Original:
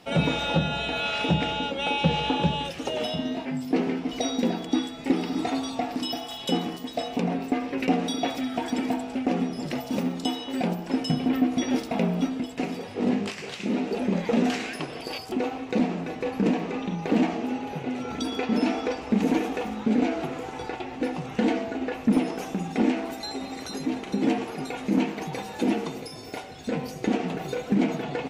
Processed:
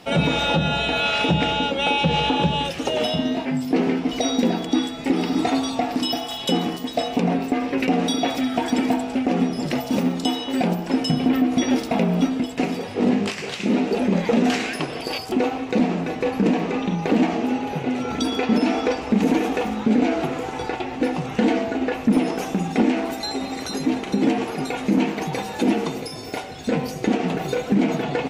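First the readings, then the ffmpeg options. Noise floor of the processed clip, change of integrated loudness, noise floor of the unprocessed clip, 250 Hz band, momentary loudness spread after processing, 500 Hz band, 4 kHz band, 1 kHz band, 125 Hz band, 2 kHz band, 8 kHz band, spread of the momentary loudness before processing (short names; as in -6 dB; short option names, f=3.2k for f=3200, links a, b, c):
-32 dBFS, +5.0 dB, -39 dBFS, +5.0 dB, 6 LU, +5.5 dB, +6.0 dB, +5.5 dB, +4.5 dB, +6.0 dB, +6.0 dB, 8 LU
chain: -af "alimiter=limit=-16dB:level=0:latency=1:release=100,volume=6.5dB"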